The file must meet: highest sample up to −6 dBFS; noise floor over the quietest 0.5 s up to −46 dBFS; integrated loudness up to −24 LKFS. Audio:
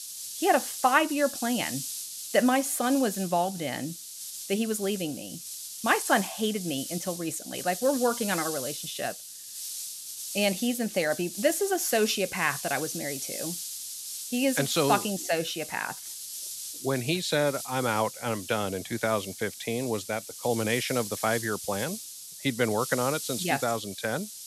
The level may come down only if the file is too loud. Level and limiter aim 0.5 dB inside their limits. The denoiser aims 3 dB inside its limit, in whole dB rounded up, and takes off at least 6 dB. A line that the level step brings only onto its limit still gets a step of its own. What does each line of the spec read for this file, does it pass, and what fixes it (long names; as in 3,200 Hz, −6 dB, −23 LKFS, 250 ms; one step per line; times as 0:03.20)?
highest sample −7.5 dBFS: in spec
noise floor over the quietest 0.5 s −42 dBFS: out of spec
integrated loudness −28.5 LKFS: in spec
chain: broadband denoise 7 dB, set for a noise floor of −42 dBFS